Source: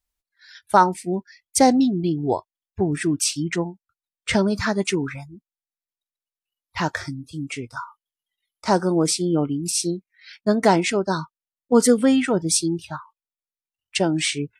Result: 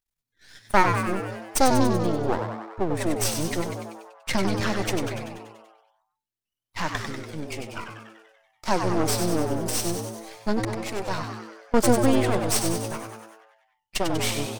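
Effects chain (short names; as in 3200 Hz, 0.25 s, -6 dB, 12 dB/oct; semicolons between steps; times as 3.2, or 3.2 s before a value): 10.51–11.74 auto swell 0.522 s; half-wave rectifier; frequency-shifting echo 96 ms, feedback 60%, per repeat +110 Hz, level -6.5 dB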